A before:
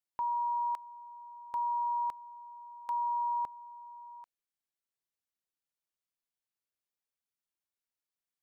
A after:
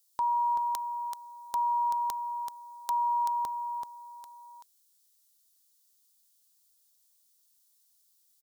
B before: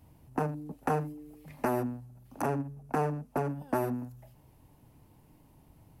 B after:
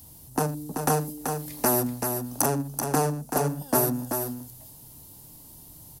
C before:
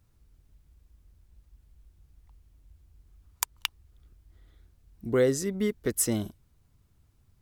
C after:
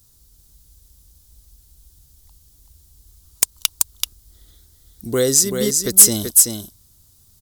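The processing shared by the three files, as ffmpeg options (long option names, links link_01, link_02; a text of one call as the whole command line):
ffmpeg -i in.wav -af "aecho=1:1:383:0.501,aexciter=amount=6.3:drive=5.8:freq=3500,acontrast=43,volume=-1dB" out.wav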